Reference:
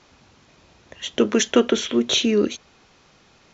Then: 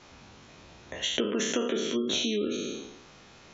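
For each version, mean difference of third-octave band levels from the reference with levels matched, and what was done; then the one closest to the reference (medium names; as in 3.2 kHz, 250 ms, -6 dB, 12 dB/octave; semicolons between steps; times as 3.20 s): 7.0 dB: spectral sustain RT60 0.85 s; band-stop 4.7 kHz, Q 29; spectral gate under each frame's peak -30 dB strong; compression 8:1, threshold -26 dBFS, peak gain reduction 16.5 dB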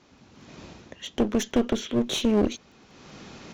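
4.5 dB: peaking EQ 230 Hz +8 dB 1.7 oct; level rider gain up to 15.5 dB; crackle 12 per s -48 dBFS; one-sided clip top -23 dBFS; trim -6.5 dB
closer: second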